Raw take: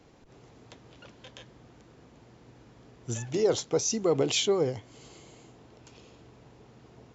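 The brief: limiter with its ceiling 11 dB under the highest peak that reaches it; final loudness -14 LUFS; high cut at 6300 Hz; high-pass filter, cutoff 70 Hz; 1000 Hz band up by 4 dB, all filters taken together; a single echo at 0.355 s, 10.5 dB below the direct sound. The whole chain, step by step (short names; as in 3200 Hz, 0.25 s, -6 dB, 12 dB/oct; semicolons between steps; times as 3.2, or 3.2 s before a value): HPF 70 Hz; LPF 6300 Hz; bell 1000 Hz +5.5 dB; limiter -23.5 dBFS; echo 0.355 s -10.5 dB; gain +19 dB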